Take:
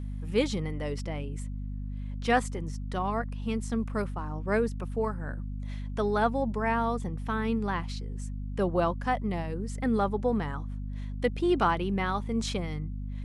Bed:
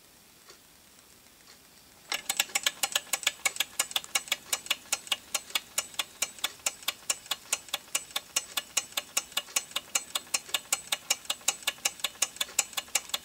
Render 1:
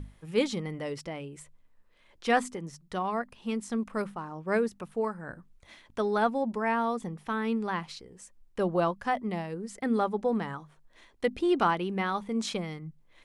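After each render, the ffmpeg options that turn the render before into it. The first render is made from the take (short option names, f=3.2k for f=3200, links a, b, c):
-af "bandreject=f=50:t=h:w=6,bandreject=f=100:t=h:w=6,bandreject=f=150:t=h:w=6,bandreject=f=200:t=h:w=6,bandreject=f=250:t=h:w=6"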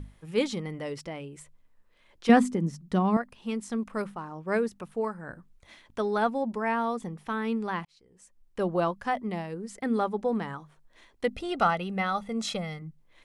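-filter_complex "[0:a]asettb=1/sr,asplit=3[a][b][c];[a]atrim=end=2.294[d];[b]atrim=start=2.29:end=3.17,asetpts=PTS-STARTPTS,afade=t=in:d=0.004:c=qsin,afade=t=out:st=0.876:d=0.004:c=qsin,equalizer=f=210:t=o:w=1.6:g=14.5[e];[c]atrim=start=3.166[f];[d][e]acrossfade=d=0.004:c1=hsin:c2=qsin[g];[g][f]acrossfade=d=0.004:c1=qsin:c2=hsin,asettb=1/sr,asplit=3[h][i][j];[h]atrim=end=11.294[k];[i]atrim=start=11.29:end=12.82,asetpts=PTS-STARTPTS,afade=t=in:d=0.004:c=qsin,afade=t=out:st=1.526:d=0.004:c=qsin,aecho=1:1:1.5:0.65,atrim=end_sample=67473[l];[j]atrim=start=12.816[m];[k][l]acrossfade=d=0.004:c1=hsin:c2=qsin[n];[n][m]acrossfade=d=0.004:c1=qsin:c2=hsin,asplit=2[o][p];[o]atrim=end=7.85,asetpts=PTS-STARTPTS,afade=t=out:st=7.846:d=0.004:c=hsin[q];[p]atrim=start=7.85,asetpts=PTS-STARTPTS,afade=t=in:d=0.79[r];[q][r]concat=n=2:v=0:a=1"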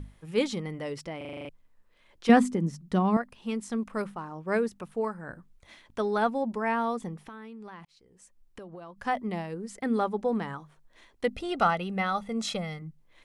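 -filter_complex "[0:a]asettb=1/sr,asplit=3[a][b][c];[a]atrim=end=7.274[d];[b]atrim=start=7.27:end=9,asetpts=PTS-STARTPTS,afade=t=in:d=0.004:c=qsin,afade=t=out:st=1.726:d=0.004:c=qsin,acompressor=threshold=-40dB:ratio=16:attack=3.2:release=140:knee=1:detection=peak[e];[c]atrim=start=8.996[f];[d][e]acrossfade=d=0.004:c1=hsin:c2=qsin[g];[g][f]acrossfade=d=0.004:c1=qsin:c2=hsin,asplit=9[h][i][j][k][l][m][n][o][p];[h]atrim=end=1.212[q];[i]atrim=start=1.168:end=1.212[r];[j]atrim=start=1.168:end=1.212[s];[k]atrim=start=1.168:end=1.212[t];[l]atrim=start=1.168:end=1.212[u];[m]atrim=start=1.168:end=1.212[v];[n]atrim=start=1.168:end=1.212[w];[o]atrim=start=1.168:end=1.212[x];[p]atrim=start=1.488[y];[q][r]acrossfade=d=0.004:c1=hsin:c2=hsin[z];[z][s]acrossfade=d=0.004:c1=hsin:c2=hsin[aa];[aa][t]acrossfade=d=0.004:c1=hsin:c2=hsin[ab];[ab][u]acrossfade=d=0.004:c1=hsin:c2=hsin[ac];[ac][v]acrossfade=d=0.004:c1=hsin:c2=hsin[ad];[ad][w]acrossfade=d=0.004:c1=hsin:c2=hsin[ae];[ae][x]acrossfade=d=0.004:c1=hsin:c2=hsin[af];[af][y]acrossfade=d=0.004:c1=hsin:c2=hsin"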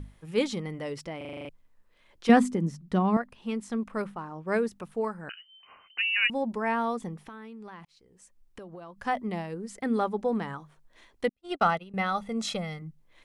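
-filter_complex "[0:a]asettb=1/sr,asplit=3[a][b][c];[a]atrim=end=2.734[d];[b]atrim=start=2.73:end=4.47,asetpts=PTS-STARTPTS,afade=t=in:d=0.004:c=qsin,afade=t=out:st=1.736:d=0.004:c=qsin,bass=f=250:g=0,treble=f=4k:g=-4[e];[c]atrim=start=4.466[f];[d][e]acrossfade=d=0.004:c1=hsin:c2=qsin[g];[g][f]acrossfade=d=0.004:c1=qsin:c2=hsin,asettb=1/sr,asplit=3[h][i][j];[h]atrim=end=5.294[k];[i]atrim=start=5.29:end=6.3,asetpts=PTS-STARTPTS,afade=t=in:d=0.004:c=qsin,afade=t=out:st=1.006:d=0.004:c=qsin,lowpass=f=2.6k:t=q:w=0.5098,lowpass=f=2.6k:t=q:w=0.6013,lowpass=f=2.6k:t=q:w=0.9,lowpass=f=2.6k:t=q:w=2.563,afreqshift=-3100[l];[j]atrim=start=6.296[m];[k][l]acrossfade=d=0.004:c1=hsin:c2=qsin[n];[n][m]acrossfade=d=0.004:c1=qsin:c2=hsin,asettb=1/sr,asplit=3[o][p][q];[o]atrim=end=11.294[r];[p]atrim=start=11.29:end=11.94,asetpts=PTS-STARTPTS,afade=t=in:d=0.004:c=qsin,afade=t=out:st=0.646:d=0.004:c=qsin,agate=range=-43dB:threshold=-32dB:ratio=16:release=100:detection=peak[s];[q]atrim=start=11.936[t];[r][s]acrossfade=d=0.004:c1=hsin:c2=qsin[u];[u][t]acrossfade=d=0.004:c1=qsin:c2=hsin"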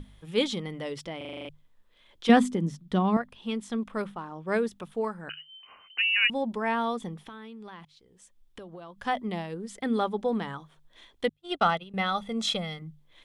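-af "equalizer=f=3.4k:w=4.1:g=10.5,bandreject=f=50:t=h:w=6,bandreject=f=100:t=h:w=6,bandreject=f=150:t=h:w=6"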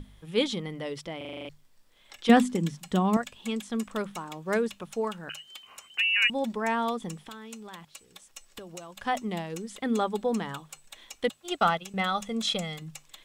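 -filter_complex "[1:a]volume=-17.5dB[a];[0:a][a]amix=inputs=2:normalize=0"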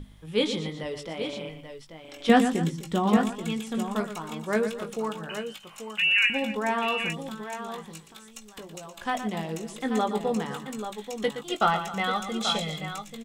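-filter_complex "[0:a]asplit=2[a][b];[b]adelay=19,volume=-7dB[c];[a][c]amix=inputs=2:normalize=0,aecho=1:1:118|256|835:0.299|0.15|0.355"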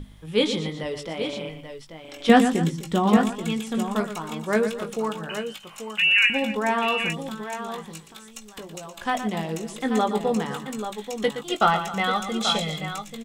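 -af "volume=3.5dB"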